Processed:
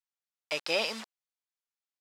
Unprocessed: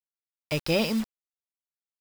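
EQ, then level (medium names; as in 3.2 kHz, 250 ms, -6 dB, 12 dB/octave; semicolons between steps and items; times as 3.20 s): band-pass 650–7900 Hz; 0.0 dB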